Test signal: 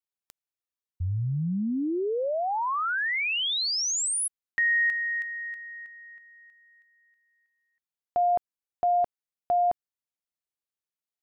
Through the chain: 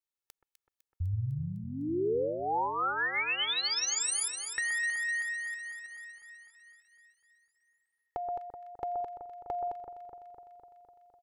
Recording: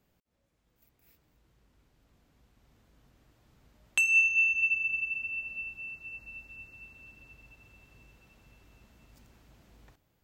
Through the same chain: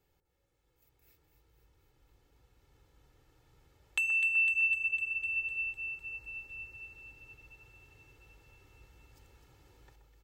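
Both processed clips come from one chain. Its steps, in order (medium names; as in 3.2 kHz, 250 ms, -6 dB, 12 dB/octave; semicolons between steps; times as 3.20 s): compression, threshold -28 dBFS; comb 2.3 ms, depth 72%; on a send: echo whose repeats swap between lows and highs 126 ms, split 1.6 kHz, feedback 82%, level -7 dB; on the sum: trim -4 dB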